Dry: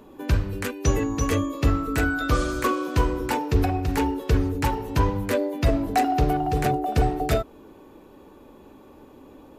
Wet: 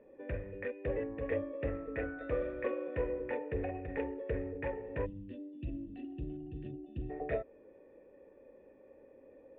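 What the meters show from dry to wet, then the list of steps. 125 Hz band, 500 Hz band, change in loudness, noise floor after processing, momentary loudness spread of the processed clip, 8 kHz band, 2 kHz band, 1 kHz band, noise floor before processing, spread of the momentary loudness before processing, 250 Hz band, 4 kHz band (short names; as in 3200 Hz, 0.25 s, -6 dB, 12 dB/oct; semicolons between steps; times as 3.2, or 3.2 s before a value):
-19.0 dB, -9.0 dB, -15.0 dB, -60 dBFS, 22 LU, under -40 dB, -15.0 dB, -23.0 dB, -49 dBFS, 3 LU, -16.0 dB, under -25 dB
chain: spectral gain 5.06–7.1, 370–2600 Hz -26 dB; vocal tract filter e; Doppler distortion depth 0.11 ms; gain +1 dB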